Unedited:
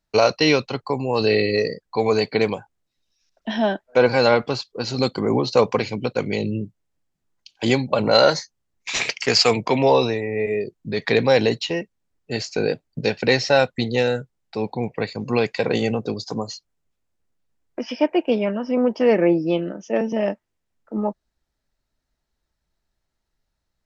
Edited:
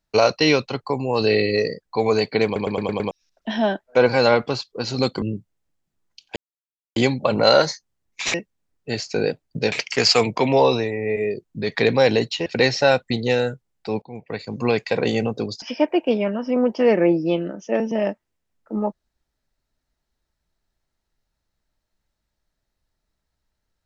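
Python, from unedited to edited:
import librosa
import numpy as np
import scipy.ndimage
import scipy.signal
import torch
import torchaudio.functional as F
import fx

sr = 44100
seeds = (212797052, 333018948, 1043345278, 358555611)

y = fx.edit(x, sr, fx.stutter_over(start_s=2.45, slice_s=0.11, count=6),
    fx.cut(start_s=5.22, length_s=1.28),
    fx.insert_silence(at_s=7.64, length_s=0.6),
    fx.move(start_s=11.76, length_s=1.38, to_s=9.02),
    fx.fade_in_from(start_s=14.7, length_s=0.6, floor_db=-19.0),
    fx.cut(start_s=16.3, length_s=1.53), tone=tone)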